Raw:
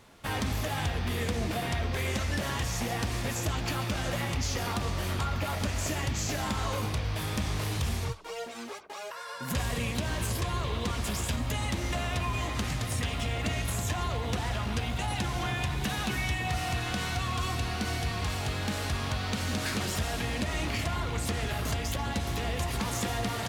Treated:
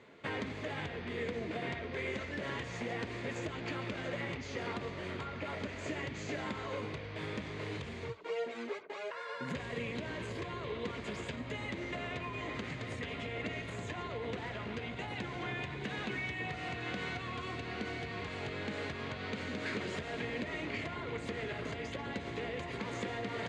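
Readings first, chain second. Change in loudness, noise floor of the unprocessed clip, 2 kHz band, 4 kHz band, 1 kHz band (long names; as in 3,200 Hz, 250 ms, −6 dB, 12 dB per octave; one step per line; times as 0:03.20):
−8.0 dB, −40 dBFS, −4.5 dB, −10.0 dB, −8.5 dB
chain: high-shelf EQ 2,400 Hz −9 dB
downward compressor, threshold −33 dBFS, peak gain reduction 7 dB
loudspeaker in its box 170–6,500 Hz, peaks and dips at 210 Hz −3 dB, 430 Hz +5 dB, 790 Hz −7 dB, 1,200 Hz −4 dB, 2,100 Hz +6 dB, 5,500 Hz −10 dB
level +1 dB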